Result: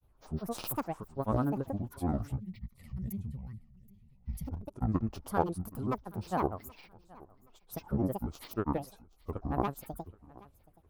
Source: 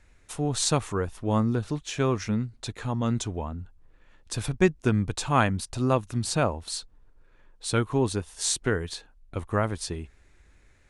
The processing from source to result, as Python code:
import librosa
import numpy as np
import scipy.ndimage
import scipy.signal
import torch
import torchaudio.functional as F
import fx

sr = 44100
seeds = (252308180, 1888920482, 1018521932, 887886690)

p1 = fx.cheby_harmonics(x, sr, harmonics=(2, 7), levels_db=(-8, -28), full_scale_db=-7.0)
p2 = fx.granulator(p1, sr, seeds[0], grain_ms=100.0, per_s=20.0, spray_ms=100.0, spread_st=12)
p3 = fx.band_shelf(p2, sr, hz=3700.0, db=-15.0, octaves=2.6)
p4 = p3 + fx.echo_feedback(p3, sr, ms=775, feedback_pct=31, wet_db=-22.5, dry=0)
p5 = fx.spec_box(p4, sr, start_s=2.4, length_s=2.07, low_hz=250.0, high_hz=1800.0, gain_db=-20)
y = F.gain(torch.from_numpy(p5), -3.5).numpy()